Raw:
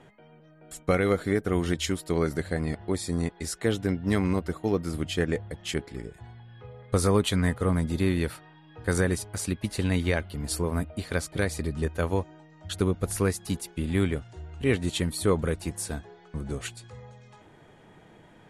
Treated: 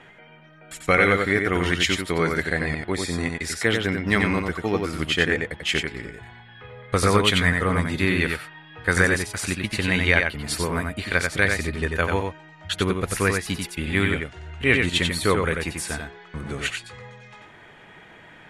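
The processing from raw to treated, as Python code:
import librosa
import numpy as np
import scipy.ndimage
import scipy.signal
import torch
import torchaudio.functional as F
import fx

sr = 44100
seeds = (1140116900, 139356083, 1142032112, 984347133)

p1 = fx.peak_eq(x, sr, hz=2100.0, db=13.5, octaves=2.0)
y = p1 + fx.echo_single(p1, sr, ms=91, db=-4.5, dry=0)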